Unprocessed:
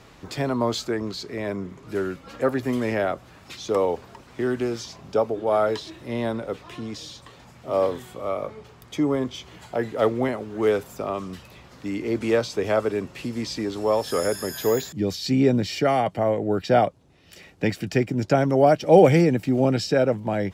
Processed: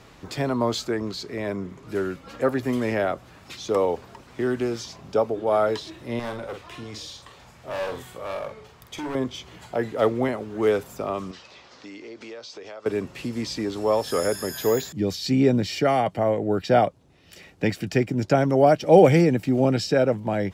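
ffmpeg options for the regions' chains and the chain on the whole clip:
-filter_complex "[0:a]asettb=1/sr,asplit=3[s0][s1][s2];[s0]atrim=end=6.194[s3];[s1]atrim=start=6.19:end=9.15,asetpts=PTS-STARTPTS,afade=t=in:d=0.004:c=qsin,afade=t=out:st=2.956:d=0.004:c=qsin,asoftclip=type=hard:threshold=0.0501,equalizer=f=240:t=o:w=1.6:g=-6,asplit=2[s4][s5];[s5]adelay=47,volume=0.447[s6];[s4][s6]amix=inputs=2:normalize=0,atrim=end_sample=130536[s7];[s2]atrim=start=9.146[s8];[s3][s7]acrossfade=d=0.004:c1=hsin:c2=qsin[s9];[s9][s8]acrossfade=d=0.004:c1=qsin:c2=hsin,asettb=1/sr,asplit=3[s10][s11][s12];[s10]atrim=end=11.314[s13];[s11]atrim=start=11.31:end=12.86,asetpts=PTS-STARTPTS,afade=t=in:d=0.004:c=qsin,afade=t=out:st=1.546:d=0.004:c=qsin,lowpass=f=5600:w=0.5412,lowpass=f=5600:w=1.3066,bass=f=250:g=-15,treble=f=4000:g=9,acompressor=threshold=0.0126:ratio=5:attack=3.2:release=140:knee=1:detection=peak[s14];[s12]atrim=start=12.856[s15];[s13][s14]acrossfade=d=0.004:c1=hsin:c2=qsin[s16];[s16][s15]acrossfade=d=0.004:c1=qsin:c2=hsin"

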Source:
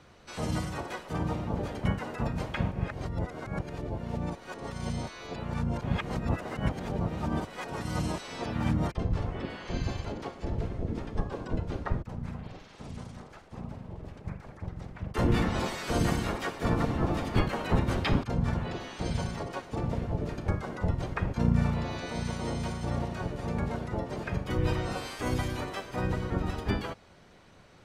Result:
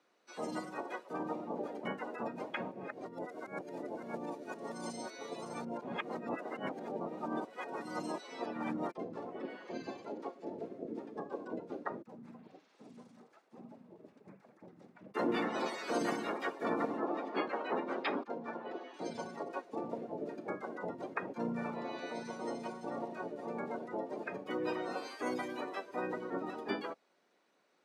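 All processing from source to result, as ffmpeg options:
-filter_complex "[0:a]asettb=1/sr,asplit=3[s0][s1][s2];[s0]atrim=end=3.134[s3];[s1]atrim=start=3.13:end=5.65,asetpts=PTS-STARTPTS,afade=t=in:d=0.004:c=qsin,afade=t=out:st=2.516:d=0.004:c=qsin,aemphasis=mode=production:type=cd,aecho=1:1:563:0.631,atrim=end_sample=111132[s4];[s2]atrim=start=5.646[s5];[s3][s4]acrossfade=d=0.004:c1=hsin:c2=qsin[s6];[s6][s5]acrossfade=d=0.004:c1=qsin:c2=hsin,asettb=1/sr,asplit=3[s7][s8][s9];[s7]atrim=end=17.004[s10];[s8]atrim=start=17:end=18.94,asetpts=PTS-STARTPTS,afade=t=in:d=0.004:c=qsin,afade=t=out:st=1.936:d=0.004:c=qsin,highpass=260,lowpass=6400,highshelf=f=4600:g=-6.5[s11];[s9]atrim=start=18.936[s12];[s10][s11]acrossfade=d=0.004:c1=hsin:c2=qsin[s13];[s13][s12]acrossfade=d=0.004:c1=qsin:c2=hsin,afftdn=nr=13:nf=-38,highpass=f=260:w=0.5412,highpass=f=260:w=1.3066,bandreject=f=3100:w=19,volume=0.75"

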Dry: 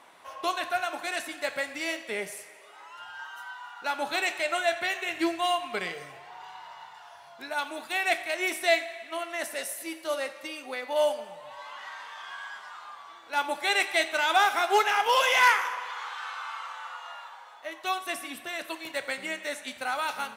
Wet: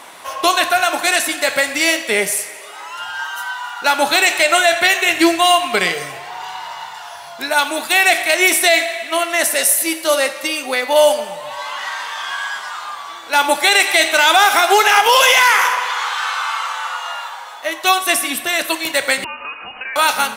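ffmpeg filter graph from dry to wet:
-filter_complex "[0:a]asettb=1/sr,asplit=3[s0][s1][s2];[s0]atrim=end=19.244[s3];[s1]atrim=start=19.24:end=19.96,asetpts=PTS-STARTPTS,afade=t=in:d=0.004:c=qsin,afade=t=out:st=0.716:d=0.004:c=qsin,acompressor=threshold=0.00794:ratio=4:attack=3.2:release=140:knee=1:detection=peak,lowpass=f=2600:t=q:w=0.5098,lowpass=f=2600:t=q:w=0.6013,lowpass=f=2600:t=q:w=0.9,lowpass=f=2600:t=q:w=2.563,afreqshift=-3100[s4];[s2]atrim=start=19.956[s5];[s3][s4]acrossfade=d=0.004:c1=hsin:c2=qsin[s6];[s6][s5]acrossfade=d=0.004:c1=qsin:c2=hsin,highshelf=f=4300:g=9,alimiter=level_in=6.31:limit=0.891:release=50:level=0:latency=1,volume=0.891"

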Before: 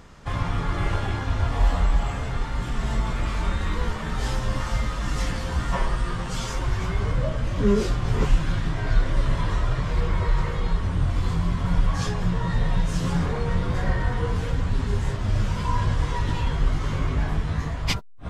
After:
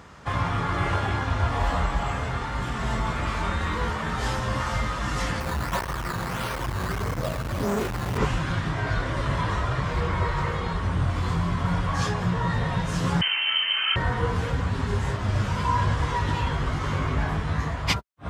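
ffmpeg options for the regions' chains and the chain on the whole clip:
-filter_complex "[0:a]asettb=1/sr,asplit=3[s0][s1][s2];[s0]atrim=end=5.404[s3];[s1]atrim=start=5.4:end=8.18,asetpts=PTS-STARTPTS,afade=t=in:d=0.004:c=qsin,afade=t=out:st=2.776:d=0.004:c=qsin,acrusher=samples=11:mix=1:aa=0.000001:lfo=1:lforange=11:lforate=1.6,volume=15,asoftclip=hard,volume=0.0668[s4];[s2]atrim=start=8.176[s5];[s3][s4]acrossfade=d=0.004:c1=hsin:c2=qsin[s6];[s6][s5]acrossfade=d=0.004:c1=qsin:c2=hsin,asettb=1/sr,asplit=3[s7][s8][s9];[s7]atrim=end=13.214[s10];[s8]atrim=start=13.21:end=13.96,asetpts=PTS-STARTPTS,afade=t=in:d=0.004:c=qsin,afade=t=out:st=0.746:d=0.004:c=qsin,highpass=85,lowpass=f=2700:t=q:w=0.5098,lowpass=f=2700:t=q:w=0.6013,lowpass=f=2700:t=q:w=0.9,lowpass=f=2700:t=q:w=2.563,afreqshift=-3200[s11];[s9]atrim=start=13.956[s12];[s10][s11]acrossfade=d=0.004:c1=hsin:c2=qsin[s13];[s13][s12]acrossfade=d=0.004:c1=qsin:c2=hsin,highpass=f=53:w=0.5412,highpass=f=53:w=1.3066,equalizer=f=1200:w=0.62:g=5"

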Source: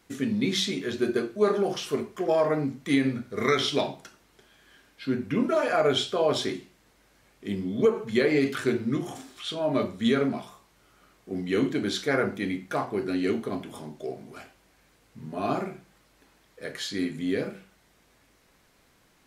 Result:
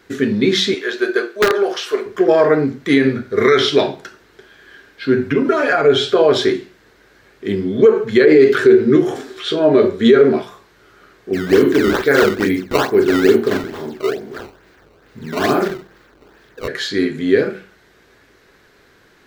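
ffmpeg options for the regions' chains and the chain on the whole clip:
-filter_complex "[0:a]asettb=1/sr,asplit=3[s0][s1][s2];[s0]atrim=end=0.744[s3];[s1]atrim=start=0.74:end=2.06,asetpts=PTS-STARTPTS,afade=t=in:d=0.004:c=qsin,afade=t=out:st=1.316:d=0.004:c=qsin,highpass=580,aeval=exprs='(mod(10*val(0)+1,2)-1)/10':c=same[s4];[s2]atrim=start=2.056[s5];[s3][s4]acrossfade=d=0.004:c1=hsin:c2=qsin[s6];[s6][s5]acrossfade=d=0.004:c1=qsin:c2=hsin,asettb=1/sr,asplit=3[s7][s8][s9];[s7]atrim=end=5.164[s10];[s8]atrim=start=5.16:end=6.15,asetpts=PTS-STARTPTS,afade=t=in:d=0.004:c=qsin,afade=t=out:st=0.986:d=0.004:c=qsin,aecho=1:1:7.2:0.78,atrim=end_sample=43659,acompressor=threshold=0.0631:ratio=3:attack=3.2:release=140:knee=1:detection=peak[s11];[s9]atrim=start=6.146[s12];[s10][s11]acrossfade=d=0.004:c1=hsin:c2=qsin[s13];[s13][s12]acrossfade=d=0.004:c1=qsin:c2=hsin,asettb=1/sr,asplit=3[s14][s15][s16];[s14]atrim=end=8.254[s17];[s15]atrim=start=8.25:end=10.43,asetpts=PTS-STARTPTS,afade=t=in:d=0.004:c=qsin,afade=t=out:st=2.176:d=0.004:c=qsin,equalizer=f=410:w=1.9:g=7.5,asplit=2[s18][s19];[s19]adelay=13,volume=0.299[s20];[s18][s20]amix=inputs=2:normalize=0,atrim=end_sample=96138[s21];[s16]atrim=start=10.426[s22];[s17][s21]acrossfade=d=0.004:c1=hsin:c2=qsin[s23];[s23][s22]acrossfade=d=0.004:c1=qsin:c2=hsin,asettb=1/sr,asplit=3[s24][s25][s26];[s24]atrim=end=11.334[s27];[s25]atrim=start=11.33:end=16.68,asetpts=PTS-STARTPTS,afade=t=in:d=0.004:c=qsin,afade=t=out:st=5.346:d=0.004:c=qsin,asplit=2[s28][s29];[s29]adelay=43,volume=0.531[s30];[s28][s30]amix=inputs=2:normalize=0,atrim=end_sample=235935,acrusher=samples=15:mix=1:aa=0.000001:lfo=1:lforange=24:lforate=2.3[s31];[s26]atrim=start=16.676[s32];[s27][s31]acrossfade=d=0.004:c1=hsin:c2=qsin[s33];[s33][s32]acrossfade=d=0.004:c1=qsin:c2=hsin,equalizer=f=100:t=o:w=0.67:g=4,equalizer=f=400:t=o:w=0.67:g=11,equalizer=f=1600:t=o:w=0.67:g=10,equalizer=f=4000:t=o:w=0.67:g=4,equalizer=f=10000:t=o:w=0.67:g=-7,alimiter=level_in=2.37:limit=0.891:release=50:level=0:latency=1,volume=0.891"

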